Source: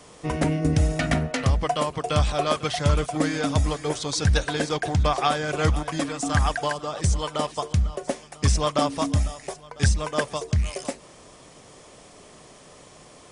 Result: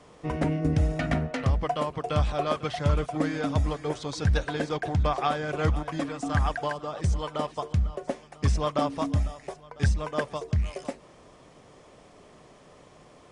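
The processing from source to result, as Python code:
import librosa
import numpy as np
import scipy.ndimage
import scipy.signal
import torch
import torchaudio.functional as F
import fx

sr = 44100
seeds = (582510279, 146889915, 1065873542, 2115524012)

y = fx.lowpass(x, sr, hz=2200.0, slope=6)
y = y * librosa.db_to_amplitude(-3.0)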